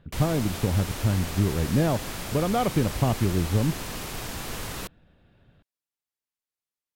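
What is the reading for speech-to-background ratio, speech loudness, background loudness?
8.0 dB, -26.0 LUFS, -34.0 LUFS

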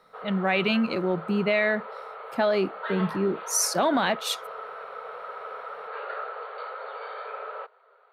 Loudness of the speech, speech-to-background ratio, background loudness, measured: -25.5 LUFS, 12.0 dB, -37.5 LUFS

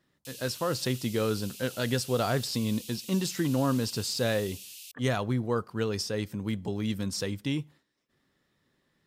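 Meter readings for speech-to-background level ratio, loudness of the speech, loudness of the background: 12.5 dB, -30.5 LUFS, -43.0 LUFS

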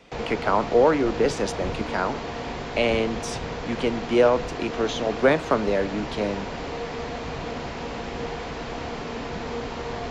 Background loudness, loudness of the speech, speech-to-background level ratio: -32.5 LUFS, -24.5 LUFS, 8.0 dB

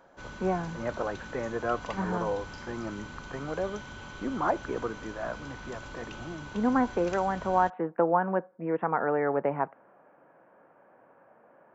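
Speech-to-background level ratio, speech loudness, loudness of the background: 13.0 dB, -30.5 LUFS, -43.5 LUFS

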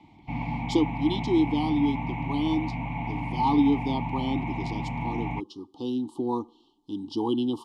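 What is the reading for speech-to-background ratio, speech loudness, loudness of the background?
4.0 dB, -28.5 LUFS, -32.5 LUFS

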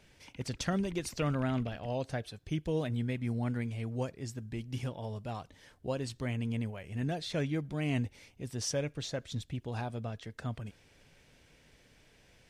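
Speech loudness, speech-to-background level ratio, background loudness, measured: -36.5 LUFS, 17.5 dB, -54.0 LUFS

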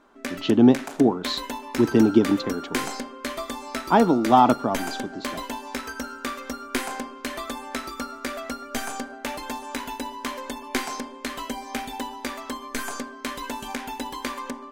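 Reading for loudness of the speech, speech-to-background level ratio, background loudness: -20.5 LUFS, 12.0 dB, -32.5 LUFS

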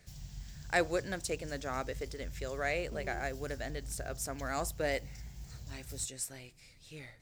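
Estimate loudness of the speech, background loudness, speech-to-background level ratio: -37.0 LUFS, -48.0 LUFS, 11.0 dB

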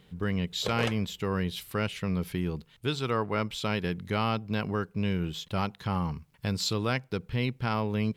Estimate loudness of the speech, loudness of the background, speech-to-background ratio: -31.0 LUFS, -38.0 LUFS, 7.0 dB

